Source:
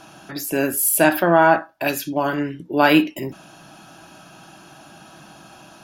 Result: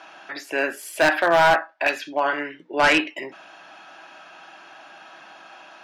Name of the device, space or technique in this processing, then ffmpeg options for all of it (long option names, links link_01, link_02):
megaphone: -filter_complex "[0:a]highpass=560,lowpass=3700,equalizer=frequency=2000:width_type=o:width=0.49:gain=7,asoftclip=type=hard:threshold=-13dB,asettb=1/sr,asplit=3[link_01][link_02][link_03];[link_01]atrim=end=2.024[link_04];[link_02]atrim=start=2.02:end=3.01,asetpts=PTS-STARTPTS,afade=type=in:duration=0.004:curve=qsin,afade=type=out:start_time=0.986:duration=0.004:curve=qsin,lowpass=9900[link_05];[link_03]atrim=start=3.006[link_06];[link_04][link_05]acrossfade=duration=0.004:curve1=hsin:curve2=qsin[link_07];[link_07][link_06]acrossfade=duration=0.004:curve1=qsin:curve2=hsin,volume=1.5dB"